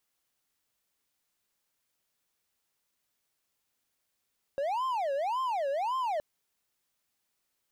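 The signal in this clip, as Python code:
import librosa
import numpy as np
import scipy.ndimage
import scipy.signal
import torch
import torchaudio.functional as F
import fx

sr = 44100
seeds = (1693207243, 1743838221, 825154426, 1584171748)

y = fx.siren(sr, length_s=1.62, kind='wail', low_hz=546.0, high_hz=1050.0, per_s=1.8, wave='triangle', level_db=-26.0)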